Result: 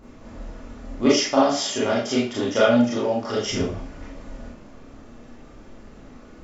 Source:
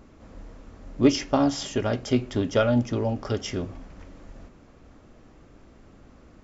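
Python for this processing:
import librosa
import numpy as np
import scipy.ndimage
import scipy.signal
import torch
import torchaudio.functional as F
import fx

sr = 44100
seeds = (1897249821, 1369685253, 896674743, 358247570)

y = fx.highpass(x, sr, hz=450.0, slope=6, at=(0.98, 3.45))
y = fx.rev_schroeder(y, sr, rt60_s=0.37, comb_ms=26, drr_db=-6.5)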